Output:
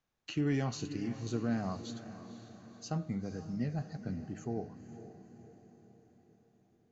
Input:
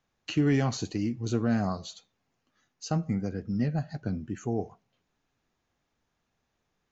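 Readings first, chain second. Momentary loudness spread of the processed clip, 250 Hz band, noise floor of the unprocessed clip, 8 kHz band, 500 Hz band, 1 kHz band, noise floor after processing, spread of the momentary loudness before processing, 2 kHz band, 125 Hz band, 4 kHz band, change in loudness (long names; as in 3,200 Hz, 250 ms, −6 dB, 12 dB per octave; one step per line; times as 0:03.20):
18 LU, −6.5 dB, −79 dBFS, can't be measured, −7.0 dB, −7.0 dB, −70 dBFS, 9 LU, −7.0 dB, −7.0 dB, −6.5 dB, −7.5 dB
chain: hum removal 103.7 Hz, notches 30
on a send: feedback delay with all-pass diffusion 509 ms, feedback 51%, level −12 dB
on the sum: level −7 dB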